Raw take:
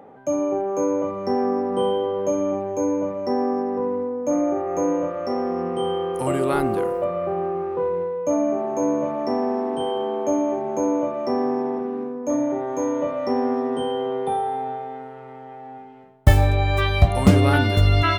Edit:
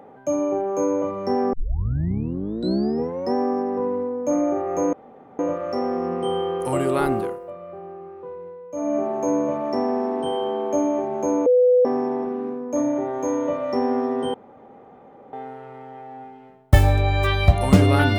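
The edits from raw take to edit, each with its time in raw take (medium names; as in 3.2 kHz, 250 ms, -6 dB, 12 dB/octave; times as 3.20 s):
1.53 s: tape start 1.81 s
4.93 s: insert room tone 0.46 s
6.68–8.51 s: dip -12.5 dB, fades 0.25 s
11.00–11.39 s: bleep 498 Hz -12 dBFS
13.88–14.87 s: room tone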